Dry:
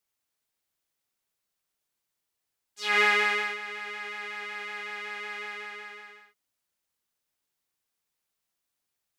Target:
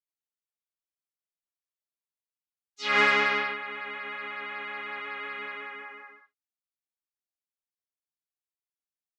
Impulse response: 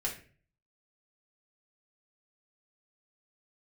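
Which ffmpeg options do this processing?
-filter_complex "[0:a]afftdn=nr=20:nf=-44,asplit=3[a][b][c];[b]asetrate=22050,aresample=44100,atempo=2,volume=-17dB[d];[c]asetrate=29433,aresample=44100,atempo=1.49831,volume=-8dB[e];[a][d][e]amix=inputs=3:normalize=0"

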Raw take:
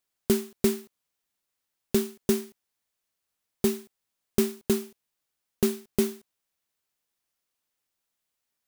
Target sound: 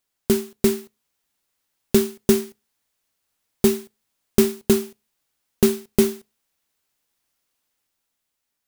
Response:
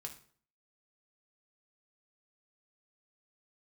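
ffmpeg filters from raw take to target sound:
-filter_complex "[0:a]dynaudnorm=f=100:g=17:m=3.5dB,asplit=2[a][b];[1:a]atrim=start_sample=2205,asetrate=88200,aresample=44100,lowshelf=f=100:g=11.5[c];[b][c]afir=irnorm=-1:irlink=0,volume=-1.5dB[d];[a][d]amix=inputs=2:normalize=0,volume=2dB"

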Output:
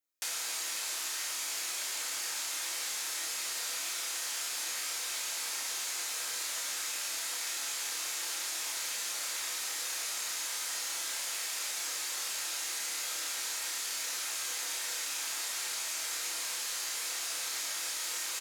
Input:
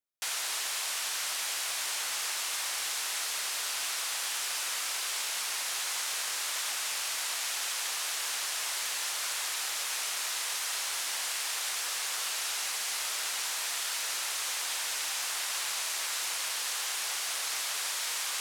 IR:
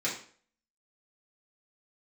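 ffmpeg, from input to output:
-filter_complex "[0:a]asplit=2[a][b];[b]adelay=30,volume=-3dB[c];[a][c]amix=inputs=2:normalize=0,asplit=2[d][e];[1:a]atrim=start_sample=2205,highshelf=f=5.8k:g=12[f];[e][f]afir=irnorm=-1:irlink=0,volume=-8dB[g];[d][g]amix=inputs=2:normalize=0,acrossover=split=440[h][i];[i]acompressor=threshold=-32dB:ratio=3[j];[h][j]amix=inputs=2:normalize=0,volume=-3.5dB"

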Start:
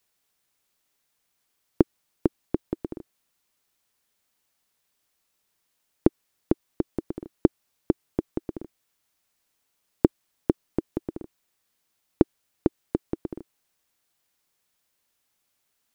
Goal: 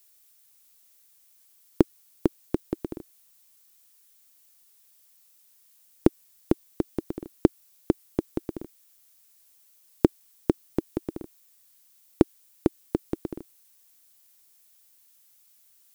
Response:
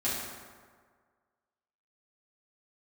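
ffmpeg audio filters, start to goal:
-af "crystalizer=i=3.5:c=0"

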